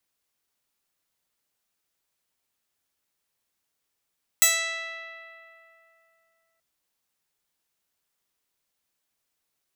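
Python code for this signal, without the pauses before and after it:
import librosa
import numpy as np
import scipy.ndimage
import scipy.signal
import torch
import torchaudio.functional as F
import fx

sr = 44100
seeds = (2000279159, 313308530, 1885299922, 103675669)

y = fx.pluck(sr, length_s=2.18, note=76, decay_s=3.09, pick=0.13, brightness='bright')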